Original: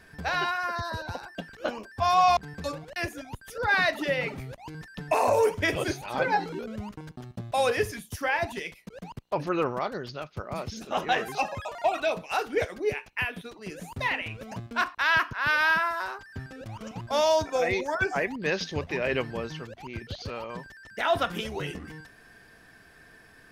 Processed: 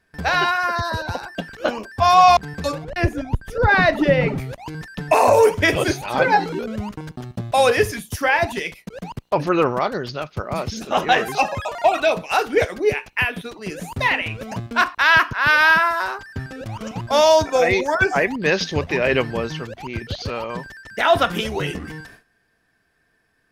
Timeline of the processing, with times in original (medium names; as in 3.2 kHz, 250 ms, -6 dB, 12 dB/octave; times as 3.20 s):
2.84–4.38 s: tilt EQ -3 dB/octave
whole clip: gate with hold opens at -40 dBFS; trim +9 dB